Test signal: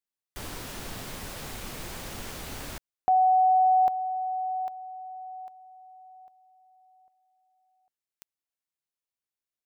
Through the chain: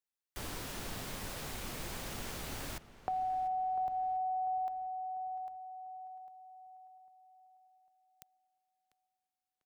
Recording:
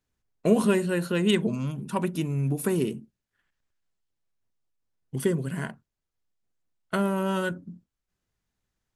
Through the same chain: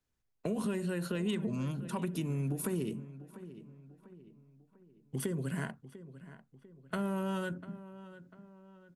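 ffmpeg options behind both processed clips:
-filter_complex "[0:a]acrossover=split=170[a][b];[a]alimiter=level_in=8.5dB:limit=-24dB:level=0:latency=1,volume=-8.5dB[c];[b]acompressor=threshold=-31dB:ratio=6:attack=14:release=108:knee=1:detection=rms[d];[c][d]amix=inputs=2:normalize=0,asplit=2[e][f];[f]adelay=696,lowpass=f=2.7k:p=1,volume=-15dB,asplit=2[g][h];[h]adelay=696,lowpass=f=2.7k:p=1,volume=0.46,asplit=2[i][j];[j]adelay=696,lowpass=f=2.7k:p=1,volume=0.46,asplit=2[k][l];[l]adelay=696,lowpass=f=2.7k:p=1,volume=0.46[m];[e][g][i][k][m]amix=inputs=5:normalize=0,volume=-3.5dB"

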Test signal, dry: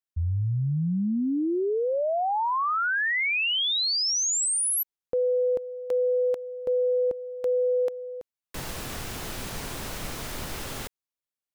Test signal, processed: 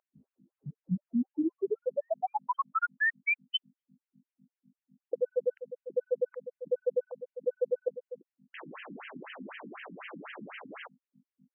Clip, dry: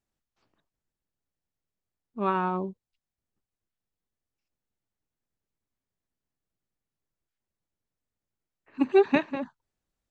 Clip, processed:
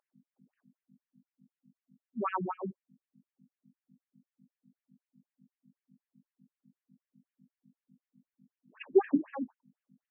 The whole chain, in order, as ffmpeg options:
-af "acontrast=80,aeval=exprs='val(0)+0.00708*(sin(2*PI*50*n/s)+sin(2*PI*2*50*n/s)/2+sin(2*PI*3*50*n/s)/3+sin(2*PI*4*50*n/s)/4+sin(2*PI*5*50*n/s)/5)':c=same,afftfilt=real='re*between(b*sr/1024,210*pow(2300/210,0.5+0.5*sin(2*PI*4*pts/sr))/1.41,210*pow(2300/210,0.5+0.5*sin(2*PI*4*pts/sr))*1.41)':imag='im*between(b*sr/1024,210*pow(2300/210,0.5+0.5*sin(2*PI*4*pts/sr))/1.41,210*pow(2300/210,0.5+0.5*sin(2*PI*4*pts/sr))*1.41)':win_size=1024:overlap=0.75,volume=-6.5dB"

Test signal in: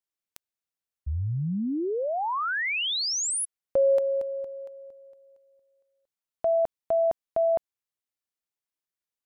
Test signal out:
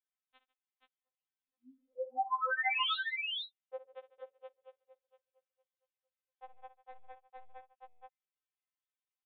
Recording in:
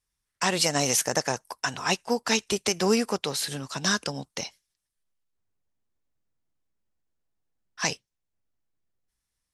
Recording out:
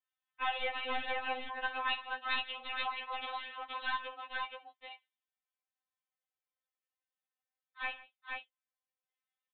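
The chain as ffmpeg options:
-af "highpass=f=630:w=0.5412,highpass=f=630:w=1.3066,aeval=exprs='clip(val(0),-1,0.075)':c=same,aecho=1:1:60|148|476:0.2|0.112|0.668,aresample=8000,aresample=44100,afftfilt=real='re*3.46*eq(mod(b,12),0)':imag='im*3.46*eq(mod(b,12),0)':win_size=2048:overlap=0.75,volume=-3.5dB"

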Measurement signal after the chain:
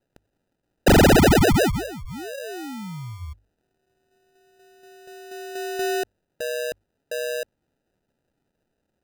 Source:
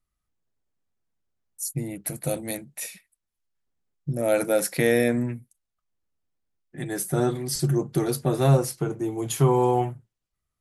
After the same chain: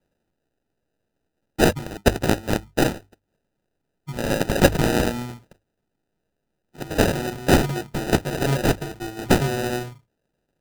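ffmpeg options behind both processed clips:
-af "aexciter=amount=5.6:drive=7.5:freq=2.2k,acrusher=samples=40:mix=1:aa=0.000001,bandreject=f=50:t=h:w=6,bandreject=f=100:t=h:w=6,volume=-5dB"

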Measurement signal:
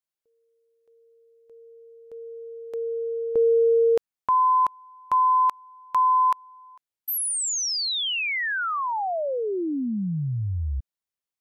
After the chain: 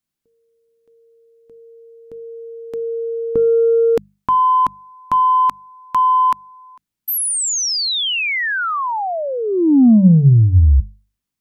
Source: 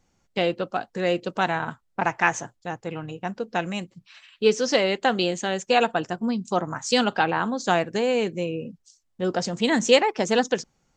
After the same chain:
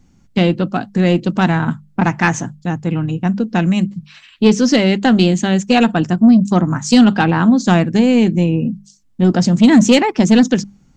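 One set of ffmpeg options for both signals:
-af "lowshelf=f=340:t=q:w=1.5:g=10.5,acontrast=82,bandreject=f=50:t=h:w=6,bandreject=f=100:t=h:w=6,bandreject=f=150:t=h:w=6,bandreject=f=200:t=h:w=6"

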